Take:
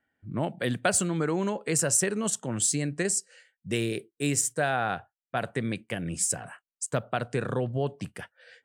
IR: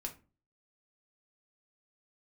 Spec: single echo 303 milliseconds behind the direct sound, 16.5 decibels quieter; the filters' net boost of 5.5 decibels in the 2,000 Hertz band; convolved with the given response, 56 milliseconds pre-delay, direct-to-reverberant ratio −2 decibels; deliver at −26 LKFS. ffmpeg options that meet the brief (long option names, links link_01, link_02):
-filter_complex "[0:a]equalizer=frequency=2000:width_type=o:gain=7.5,aecho=1:1:303:0.15,asplit=2[link_01][link_02];[1:a]atrim=start_sample=2205,adelay=56[link_03];[link_02][link_03]afir=irnorm=-1:irlink=0,volume=3.5dB[link_04];[link_01][link_04]amix=inputs=2:normalize=0,volume=-2.5dB"